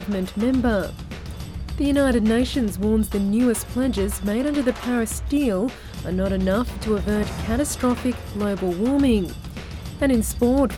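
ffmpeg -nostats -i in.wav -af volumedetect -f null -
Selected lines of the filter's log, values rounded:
mean_volume: -21.9 dB
max_volume: -6.8 dB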